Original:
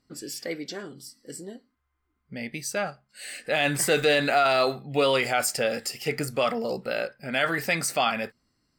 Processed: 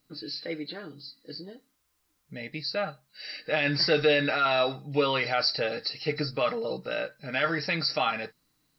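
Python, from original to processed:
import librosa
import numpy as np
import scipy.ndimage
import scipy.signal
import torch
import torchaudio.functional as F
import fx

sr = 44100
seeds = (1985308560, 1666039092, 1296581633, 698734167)

y = fx.freq_compress(x, sr, knee_hz=3800.0, ratio=4.0)
y = fx.peak_eq(y, sr, hz=3400.0, db=-3.5, octaves=0.22)
y = fx.notch(y, sr, hz=710.0, q=12.0)
y = y + 0.46 * np.pad(y, (int(6.5 * sr / 1000.0), 0))[:len(y)]
y = fx.quant_dither(y, sr, seeds[0], bits=12, dither='triangular')
y = y * 10.0 ** (-3.0 / 20.0)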